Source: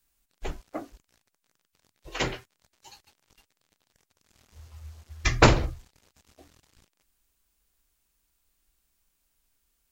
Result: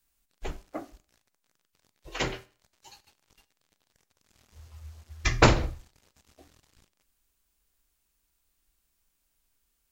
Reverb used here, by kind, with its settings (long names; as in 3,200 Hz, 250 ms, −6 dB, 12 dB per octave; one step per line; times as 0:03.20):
four-comb reverb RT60 0.42 s, combs from 30 ms, DRR 16.5 dB
level −1.5 dB